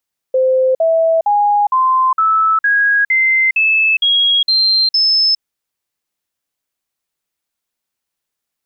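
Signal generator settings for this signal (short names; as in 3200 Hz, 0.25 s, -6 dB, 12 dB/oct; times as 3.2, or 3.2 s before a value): stepped sine 519 Hz up, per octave 3, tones 11, 0.41 s, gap 0.05 s -9.5 dBFS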